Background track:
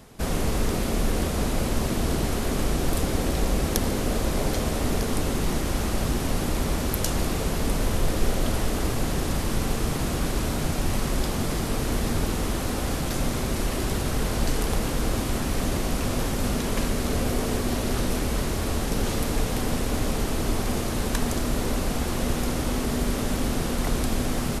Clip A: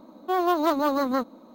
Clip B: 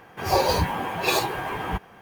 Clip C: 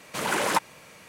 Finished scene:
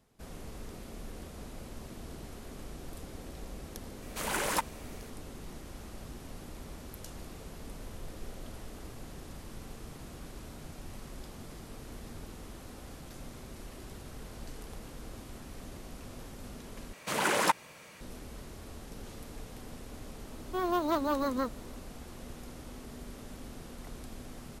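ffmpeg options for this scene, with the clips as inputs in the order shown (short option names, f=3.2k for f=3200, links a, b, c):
-filter_complex "[3:a]asplit=2[a][b];[0:a]volume=-20dB[c];[a]highshelf=f=8.3k:g=9[d];[1:a]bandreject=f=770:w=7[e];[c]asplit=2[f][g];[f]atrim=end=16.934[h];[b]atrim=end=1.08,asetpts=PTS-STARTPTS,volume=-2.5dB[i];[g]atrim=start=18.006[j];[d]atrim=end=1.08,asetpts=PTS-STARTPTS,volume=-7.5dB,afade=t=in:d=0.004:c=hsin,afade=t=out:st=1.076:d=0.004:c=hsin,adelay=4020[k];[e]atrim=end=1.54,asetpts=PTS-STARTPTS,volume=-6.5dB,afade=t=in:d=0.004:c=hsin,afade=t=out:st=1.536:d=0.004:c=hsin,adelay=20250[l];[h][i]acrossfade=d=0.004:c1=hsin:c2=hsin[m];[m][j]acrossfade=d=0.004:c1=hsin:c2=hsin[n];[n][k][l]amix=inputs=3:normalize=0"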